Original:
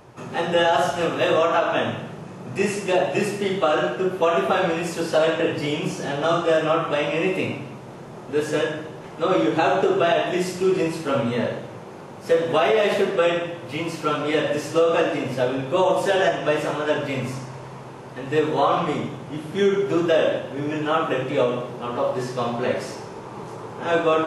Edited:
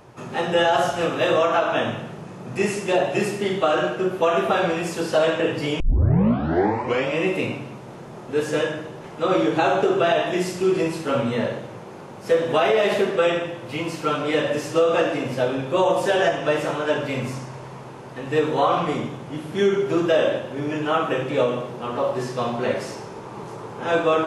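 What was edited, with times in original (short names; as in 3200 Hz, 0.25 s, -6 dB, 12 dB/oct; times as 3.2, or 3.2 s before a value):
5.8 tape start 1.36 s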